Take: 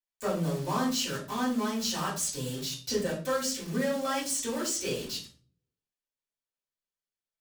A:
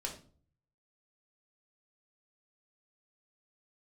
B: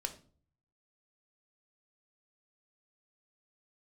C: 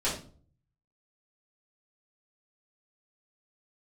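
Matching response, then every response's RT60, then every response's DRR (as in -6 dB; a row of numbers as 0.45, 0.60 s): C; 0.45, 0.45, 0.45 s; -0.5, 6.0, -9.5 dB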